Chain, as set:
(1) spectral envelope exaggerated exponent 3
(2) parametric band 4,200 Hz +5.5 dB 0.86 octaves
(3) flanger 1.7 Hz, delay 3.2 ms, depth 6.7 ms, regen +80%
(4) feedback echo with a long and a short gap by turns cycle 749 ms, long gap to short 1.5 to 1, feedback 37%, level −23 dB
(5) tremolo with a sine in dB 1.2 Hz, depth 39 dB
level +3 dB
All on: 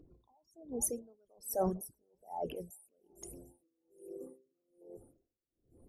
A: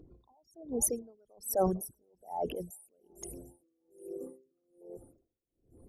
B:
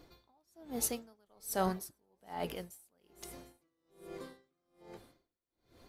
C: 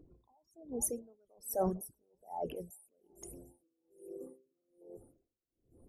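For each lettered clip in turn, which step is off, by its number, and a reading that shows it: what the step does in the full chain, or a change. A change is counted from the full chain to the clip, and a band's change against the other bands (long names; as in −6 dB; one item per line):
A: 3, change in integrated loudness +4.0 LU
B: 1, 2 kHz band +14.0 dB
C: 2, 4 kHz band −2.5 dB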